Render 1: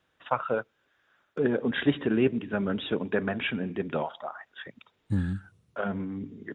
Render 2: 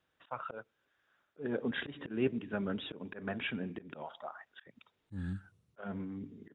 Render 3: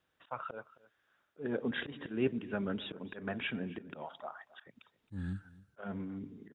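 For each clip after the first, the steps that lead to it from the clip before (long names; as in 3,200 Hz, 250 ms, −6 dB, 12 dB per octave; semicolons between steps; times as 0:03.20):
volume swells 172 ms; level −7 dB
single-tap delay 267 ms −20 dB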